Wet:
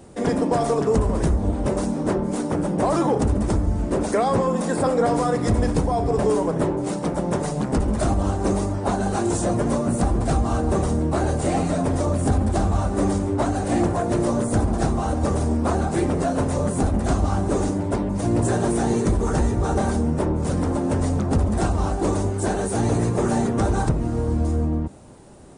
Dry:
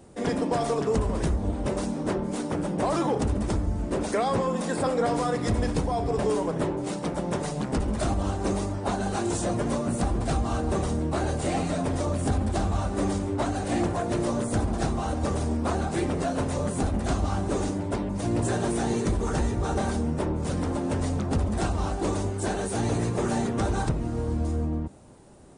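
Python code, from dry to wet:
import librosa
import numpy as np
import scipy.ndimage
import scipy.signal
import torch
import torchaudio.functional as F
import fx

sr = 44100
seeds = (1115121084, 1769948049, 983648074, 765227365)

y = fx.dynamic_eq(x, sr, hz=3200.0, q=0.74, threshold_db=-48.0, ratio=4.0, max_db=-6)
y = F.gain(torch.from_numpy(y), 5.5).numpy()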